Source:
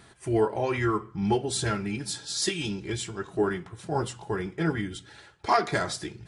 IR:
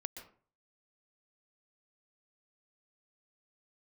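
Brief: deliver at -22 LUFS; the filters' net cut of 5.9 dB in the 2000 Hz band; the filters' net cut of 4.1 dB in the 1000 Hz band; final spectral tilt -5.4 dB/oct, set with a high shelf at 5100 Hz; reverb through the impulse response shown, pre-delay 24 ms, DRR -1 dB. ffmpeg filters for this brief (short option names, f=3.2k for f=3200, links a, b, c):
-filter_complex "[0:a]equalizer=f=1k:t=o:g=-4,equalizer=f=2k:t=o:g=-5.5,highshelf=f=5.1k:g=-4.5,asplit=2[a][b];[1:a]atrim=start_sample=2205,adelay=24[c];[b][c]afir=irnorm=-1:irlink=0,volume=3dB[d];[a][d]amix=inputs=2:normalize=0,volume=5dB"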